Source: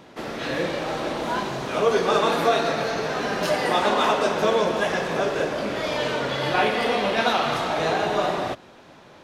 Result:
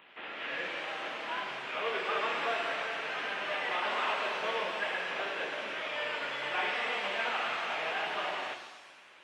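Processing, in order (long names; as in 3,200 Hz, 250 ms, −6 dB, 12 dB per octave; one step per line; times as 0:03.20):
variable-slope delta modulation 16 kbit/s
first difference
reverb with rising layers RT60 1.2 s, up +7 semitones, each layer −8 dB, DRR 6 dB
level +7 dB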